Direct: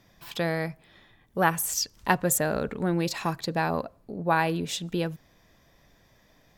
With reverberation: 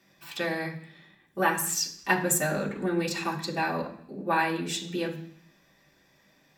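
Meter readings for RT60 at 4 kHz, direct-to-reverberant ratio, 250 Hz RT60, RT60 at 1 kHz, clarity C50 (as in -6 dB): 0.75 s, -3.0 dB, 0.85 s, 0.65 s, 10.0 dB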